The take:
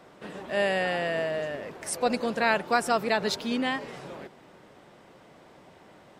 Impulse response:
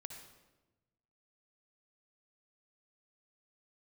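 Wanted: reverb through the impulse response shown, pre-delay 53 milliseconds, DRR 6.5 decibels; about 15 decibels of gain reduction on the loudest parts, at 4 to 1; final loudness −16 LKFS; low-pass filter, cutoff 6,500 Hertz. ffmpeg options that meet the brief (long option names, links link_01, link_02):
-filter_complex "[0:a]lowpass=6500,acompressor=threshold=-38dB:ratio=4,asplit=2[link_01][link_02];[1:a]atrim=start_sample=2205,adelay=53[link_03];[link_02][link_03]afir=irnorm=-1:irlink=0,volume=-2.5dB[link_04];[link_01][link_04]amix=inputs=2:normalize=0,volume=23dB"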